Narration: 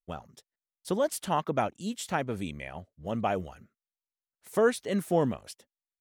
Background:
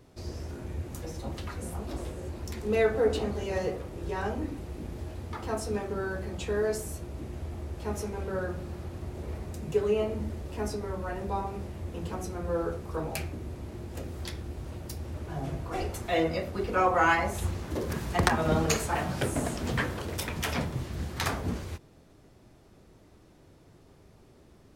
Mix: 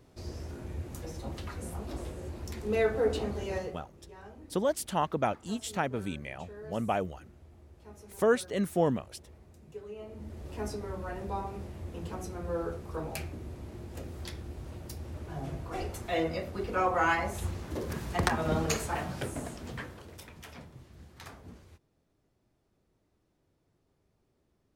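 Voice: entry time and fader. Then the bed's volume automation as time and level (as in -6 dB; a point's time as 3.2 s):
3.65 s, -1.0 dB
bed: 3.54 s -2.5 dB
3.9 s -17.5 dB
9.95 s -17.5 dB
10.48 s -3.5 dB
18.91 s -3.5 dB
20.51 s -17.5 dB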